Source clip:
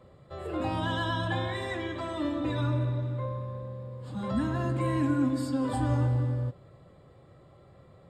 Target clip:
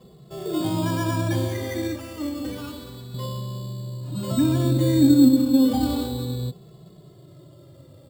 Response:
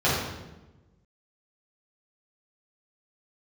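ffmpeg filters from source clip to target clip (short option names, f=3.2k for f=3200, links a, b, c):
-filter_complex "[0:a]asetnsamples=n=441:p=0,asendcmd='1.96 equalizer g 4.5;3.14 equalizer g 13.5',equalizer=f=230:w=0.46:g=13,acrusher=samples=11:mix=1:aa=0.000001,asplit=2[a][b];[b]adelay=2.3,afreqshift=-0.31[c];[a][c]amix=inputs=2:normalize=1"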